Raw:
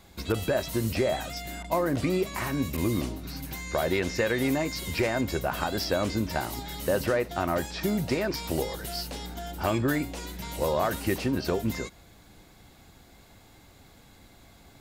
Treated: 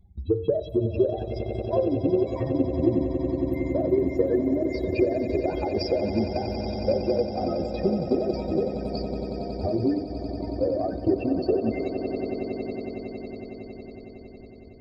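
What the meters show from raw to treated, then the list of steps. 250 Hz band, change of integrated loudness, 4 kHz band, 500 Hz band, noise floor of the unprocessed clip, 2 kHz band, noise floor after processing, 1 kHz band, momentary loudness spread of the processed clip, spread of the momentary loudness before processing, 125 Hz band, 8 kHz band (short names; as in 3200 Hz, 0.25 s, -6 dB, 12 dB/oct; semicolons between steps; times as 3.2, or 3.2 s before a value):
+4.5 dB, +2.5 dB, -7.0 dB, +5.0 dB, -55 dBFS, -11.5 dB, -44 dBFS, -2.5 dB, 12 LU, 9 LU, +1.5 dB, under -20 dB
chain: spectral contrast raised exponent 3.7; bell 1300 Hz -9 dB 1.1 oct; notch 5200 Hz, Q 24; swelling echo 92 ms, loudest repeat 8, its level -12 dB; transient shaper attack +6 dB, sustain -4 dB; de-hum 50.29 Hz, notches 31; dynamic EQ 390 Hz, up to +5 dB, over -33 dBFS, Q 1.9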